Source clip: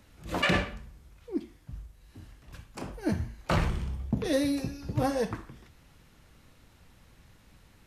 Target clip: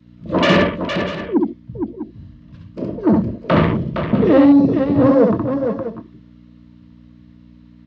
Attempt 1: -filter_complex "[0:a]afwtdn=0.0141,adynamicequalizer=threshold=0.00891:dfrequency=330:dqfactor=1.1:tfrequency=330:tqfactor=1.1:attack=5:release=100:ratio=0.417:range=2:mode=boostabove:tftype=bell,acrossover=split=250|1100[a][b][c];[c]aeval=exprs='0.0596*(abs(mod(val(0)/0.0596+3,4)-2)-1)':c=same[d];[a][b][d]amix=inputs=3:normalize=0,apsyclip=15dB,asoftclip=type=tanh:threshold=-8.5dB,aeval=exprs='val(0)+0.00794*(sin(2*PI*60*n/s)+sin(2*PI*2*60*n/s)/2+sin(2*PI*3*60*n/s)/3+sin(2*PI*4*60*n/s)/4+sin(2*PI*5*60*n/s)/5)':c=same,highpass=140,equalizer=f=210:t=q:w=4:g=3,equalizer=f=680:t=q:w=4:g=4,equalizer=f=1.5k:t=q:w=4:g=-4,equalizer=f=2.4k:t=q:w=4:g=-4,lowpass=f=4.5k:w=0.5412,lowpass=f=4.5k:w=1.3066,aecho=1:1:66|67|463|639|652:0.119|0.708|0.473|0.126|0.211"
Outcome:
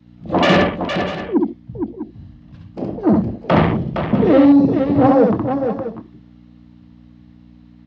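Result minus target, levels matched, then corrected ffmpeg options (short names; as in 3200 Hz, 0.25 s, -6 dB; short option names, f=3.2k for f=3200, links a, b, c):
1000 Hz band +3.0 dB
-filter_complex "[0:a]afwtdn=0.0141,adynamicequalizer=threshold=0.00891:dfrequency=330:dqfactor=1.1:tfrequency=330:tqfactor=1.1:attack=5:release=100:ratio=0.417:range=2:mode=boostabove:tftype=bell,asuperstop=centerf=780:order=8:qfactor=4,acrossover=split=250|1100[a][b][c];[c]aeval=exprs='0.0596*(abs(mod(val(0)/0.0596+3,4)-2)-1)':c=same[d];[a][b][d]amix=inputs=3:normalize=0,apsyclip=15dB,asoftclip=type=tanh:threshold=-8.5dB,aeval=exprs='val(0)+0.00794*(sin(2*PI*60*n/s)+sin(2*PI*2*60*n/s)/2+sin(2*PI*3*60*n/s)/3+sin(2*PI*4*60*n/s)/4+sin(2*PI*5*60*n/s)/5)':c=same,highpass=140,equalizer=f=210:t=q:w=4:g=3,equalizer=f=680:t=q:w=4:g=4,equalizer=f=1.5k:t=q:w=4:g=-4,equalizer=f=2.4k:t=q:w=4:g=-4,lowpass=f=4.5k:w=0.5412,lowpass=f=4.5k:w=1.3066,aecho=1:1:66|67|463|639|652:0.119|0.708|0.473|0.126|0.211"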